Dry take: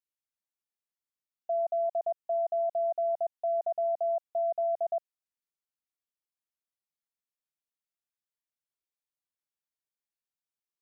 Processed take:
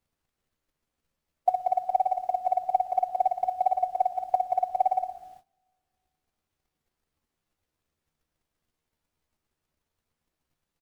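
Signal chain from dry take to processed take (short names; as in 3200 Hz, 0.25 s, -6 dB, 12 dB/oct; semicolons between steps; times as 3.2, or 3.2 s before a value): bin magnitudes rounded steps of 15 dB; on a send: reverse bouncing-ball echo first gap 50 ms, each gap 1.15×, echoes 5; on the sum: digital reverb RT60 2.4 s, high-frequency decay 0.75×, pre-delay 0.1 s, DRR 13 dB; pitch shift +1.5 st; bell 540 Hz +12 dB 0.29 oct; added noise pink -66 dBFS; doubler 13 ms -2 dB; gate -50 dBFS, range -20 dB; transient shaper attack +12 dB, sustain -2 dB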